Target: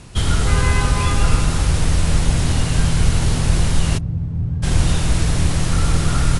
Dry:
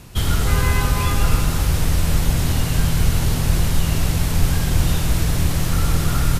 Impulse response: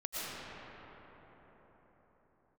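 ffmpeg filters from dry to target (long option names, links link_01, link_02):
-filter_complex "[0:a]asplit=3[link_01][link_02][link_03];[link_01]afade=type=out:start_time=3.97:duration=0.02[link_04];[link_02]bandpass=frequency=120:width_type=q:width=1.5:csg=0,afade=type=in:start_time=3.97:duration=0.02,afade=type=out:start_time=4.62:duration=0.02[link_05];[link_03]afade=type=in:start_time=4.62:duration=0.02[link_06];[link_04][link_05][link_06]amix=inputs=3:normalize=0,volume=2dB" -ar 24000 -c:a libmp3lame -b:a 96k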